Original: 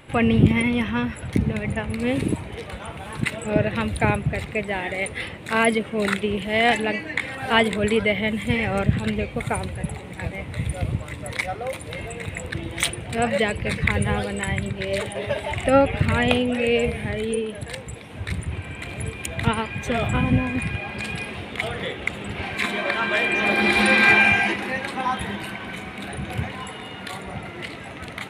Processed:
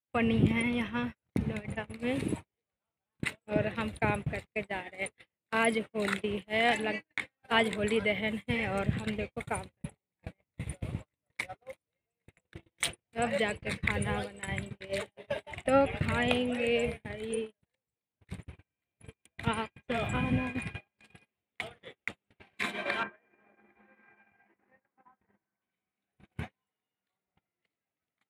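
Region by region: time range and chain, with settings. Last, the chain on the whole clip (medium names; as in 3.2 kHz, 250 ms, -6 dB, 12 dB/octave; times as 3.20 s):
23.03–25.62 s: low-pass 1.9 kHz 24 dB/octave + compression 20:1, threshold -25 dBFS
whole clip: gate -25 dBFS, range -48 dB; bass shelf 100 Hz -7 dB; trim -8 dB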